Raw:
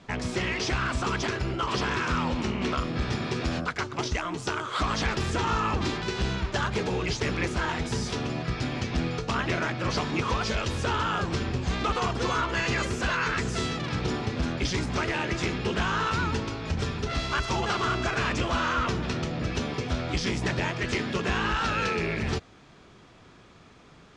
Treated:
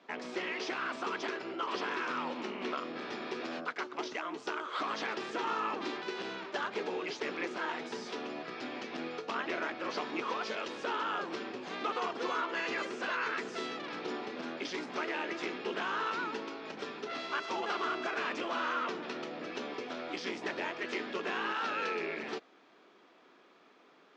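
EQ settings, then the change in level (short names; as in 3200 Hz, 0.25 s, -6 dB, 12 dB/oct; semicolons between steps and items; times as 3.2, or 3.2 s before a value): HPF 280 Hz 24 dB/oct; air absorption 130 m; -5.5 dB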